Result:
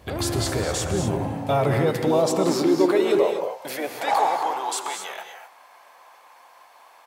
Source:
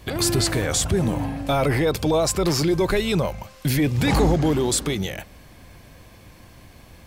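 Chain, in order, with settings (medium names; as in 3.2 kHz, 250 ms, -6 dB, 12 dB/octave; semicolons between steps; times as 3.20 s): peaking EQ 750 Hz +8 dB 1.8 oct; de-hum 50 Hz, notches 3; harmony voices -4 st -8 dB; gated-style reverb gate 270 ms rising, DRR 5 dB; high-pass sweep 70 Hz -> 920 Hz, 0.89–4.43 s; trim -7.5 dB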